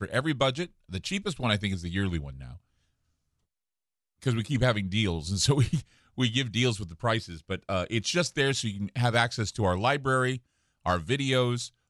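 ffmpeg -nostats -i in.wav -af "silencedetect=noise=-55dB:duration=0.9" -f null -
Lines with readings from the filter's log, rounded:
silence_start: 2.58
silence_end: 4.22 | silence_duration: 1.64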